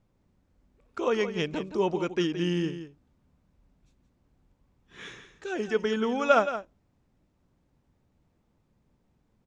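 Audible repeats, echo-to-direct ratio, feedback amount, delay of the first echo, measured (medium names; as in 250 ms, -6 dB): 1, -11.0 dB, no regular repeats, 170 ms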